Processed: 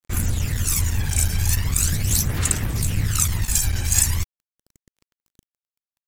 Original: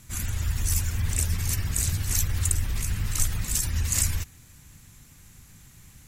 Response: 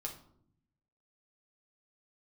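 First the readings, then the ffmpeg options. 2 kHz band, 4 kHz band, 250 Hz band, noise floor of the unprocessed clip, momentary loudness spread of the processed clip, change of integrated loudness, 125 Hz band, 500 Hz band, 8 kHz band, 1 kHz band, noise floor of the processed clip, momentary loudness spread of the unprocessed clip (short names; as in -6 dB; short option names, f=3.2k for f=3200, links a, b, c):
+6.0 dB, +6.0 dB, +8.0 dB, -52 dBFS, 5 LU, +5.5 dB, +5.0 dB, +8.5 dB, +6.0 dB, +7.5 dB, under -85 dBFS, 5 LU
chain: -af "aphaser=in_gain=1:out_gain=1:delay=1.3:decay=0.59:speed=0.4:type=sinusoidal,aeval=exprs='sgn(val(0))*max(abs(val(0))-0.0168,0)':c=same,afftfilt=real='re*lt(hypot(re,im),1)':imag='im*lt(hypot(re,im),1)':win_size=1024:overlap=0.75,volume=5dB"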